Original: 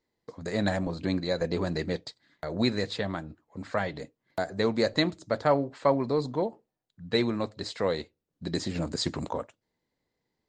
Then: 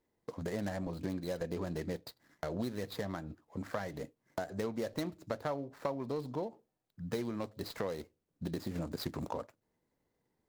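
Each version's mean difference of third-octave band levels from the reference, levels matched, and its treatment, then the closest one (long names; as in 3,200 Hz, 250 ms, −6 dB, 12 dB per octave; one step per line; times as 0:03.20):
5.5 dB: running median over 15 samples
high-shelf EQ 6,000 Hz +7 dB
downward compressor 4 to 1, threshold −37 dBFS, peak gain reduction 16 dB
level +1.5 dB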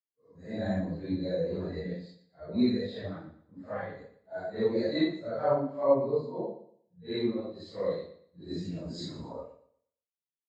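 7.5 dB: random phases in long frames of 200 ms
repeating echo 118 ms, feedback 42%, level −9 dB
every bin expanded away from the loudest bin 1.5 to 1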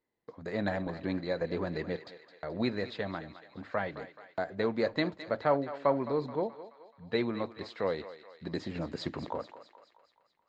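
3.5 dB: low-pass filter 2,900 Hz 12 dB per octave
low-shelf EQ 170 Hz −6 dB
on a send: feedback echo with a high-pass in the loop 214 ms, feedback 58%, high-pass 540 Hz, level −12 dB
on the sum: level −3 dB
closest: third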